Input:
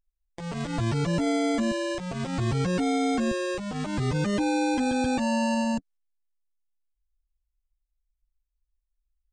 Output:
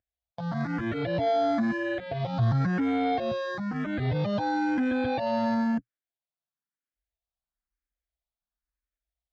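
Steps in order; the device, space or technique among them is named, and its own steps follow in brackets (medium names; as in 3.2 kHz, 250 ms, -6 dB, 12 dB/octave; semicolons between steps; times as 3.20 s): barber-pole phaser into a guitar amplifier (barber-pole phaser +1 Hz; saturation -24 dBFS, distortion -17 dB; cabinet simulation 92–3900 Hz, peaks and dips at 120 Hz +6 dB, 400 Hz -6 dB, 690 Hz +7 dB, 990 Hz -3 dB, 1.6 kHz +4 dB, 2.7 kHz -8 dB); trim +3.5 dB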